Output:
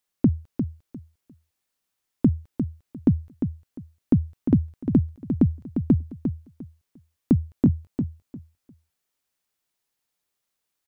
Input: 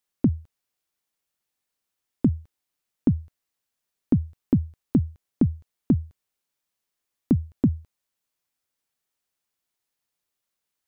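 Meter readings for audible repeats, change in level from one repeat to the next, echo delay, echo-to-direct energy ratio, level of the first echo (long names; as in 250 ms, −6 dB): 3, −13.5 dB, 351 ms, −7.5 dB, −7.5 dB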